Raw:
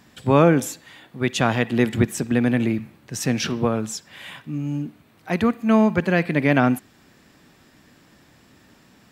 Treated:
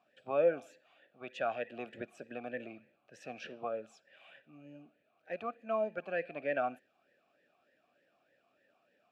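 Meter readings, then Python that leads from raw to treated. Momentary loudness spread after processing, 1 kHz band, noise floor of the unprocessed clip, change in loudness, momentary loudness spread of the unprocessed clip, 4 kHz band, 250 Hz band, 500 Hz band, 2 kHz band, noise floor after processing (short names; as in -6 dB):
23 LU, -14.0 dB, -55 dBFS, -16.0 dB, 15 LU, -23.0 dB, -27.5 dB, -12.0 dB, -16.5 dB, -76 dBFS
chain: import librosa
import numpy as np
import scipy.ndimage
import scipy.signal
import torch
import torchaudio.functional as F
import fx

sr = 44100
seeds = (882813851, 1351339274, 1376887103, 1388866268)

y = fx.vowel_sweep(x, sr, vowels='a-e', hz=3.3)
y = y * 10.0 ** (-5.5 / 20.0)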